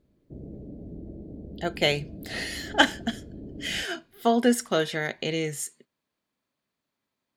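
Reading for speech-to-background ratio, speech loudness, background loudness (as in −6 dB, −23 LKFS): 15.5 dB, −27.0 LKFS, −42.5 LKFS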